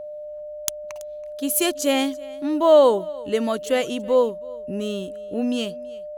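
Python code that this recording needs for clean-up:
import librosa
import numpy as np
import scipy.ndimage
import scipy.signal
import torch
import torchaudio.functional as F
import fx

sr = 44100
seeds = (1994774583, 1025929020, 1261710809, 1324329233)

y = fx.notch(x, sr, hz=600.0, q=30.0)
y = fx.fix_echo_inverse(y, sr, delay_ms=329, level_db=-22.0)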